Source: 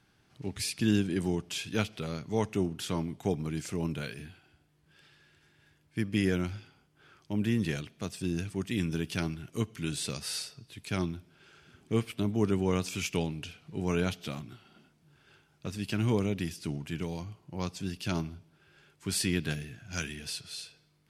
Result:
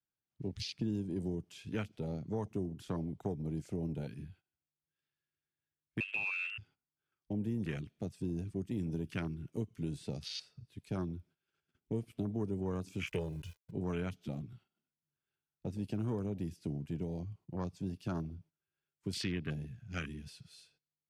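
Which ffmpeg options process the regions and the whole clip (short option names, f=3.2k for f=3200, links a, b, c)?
-filter_complex "[0:a]asettb=1/sr,asplit=3[a][b][c];[a]atrim=end=6.004[d];[b]atrim=start=6:end=6.58,asetpts=PTS-STARTPTS,afade=t=in:d=0.004:c=qsin,afade=t=out:st=0.576:d=0.004:c=qsin,lowshelf=f=170:g=2.5,lowpass=f=2.4k:t=q:w=0.5098,lowpass=f=2.4k:t=q:w=0.6013,lowpass=f=2.4k:t=q:w=0.9,lowpass=f=2.4k:t=q:w=2.563,afreqshift=-2800[e];[c]atrim=start=6.576[f];[d][e]acrossfade=d=0.004:c1=hsin:c2=qsin[g];[g][f]acrossfade=d=0.004:c1=qsin:c2=hsin,asettb=1/sr,asplit=3[h][i][j];[h]atrim=end=13.074[k];[i]atrim=start=13.07:end=13.71,asetpts=PTS-STARTPTS,afade=t=in:d=0.004:c=qsin,afade=t=out:st=0.636:d=0.004:c=qsin,highshelf=f=6.8k:g=10.5,aeval=exprs='val(0)*gte(abs(val(0)),0.00596)':c=same,aecho=1:1:2:0.83,atrim=end_sample=28224[l];[j]atrim=start=13.706[m];[k][l]acrossfade=d=0.004:c1=hsin:c2=qsin[n];[n][m]acrossfade=d=0.004:c1=qsin:c2=hsin,agate=range=-16dB:threshold=-55dB:ratio=16:detection=peak,afwtdn=0.0158,acrossover=split=140|5300[o][p][q];[o]acompressor=threshold=-42dB:ratio=4[r];[p]acompressor=threshold=-36dB:ratio=4[s];[q]acompressor=threshold=-59dB:ratio=4[t];[r][s][t]amix=inputs=3:normalize=0"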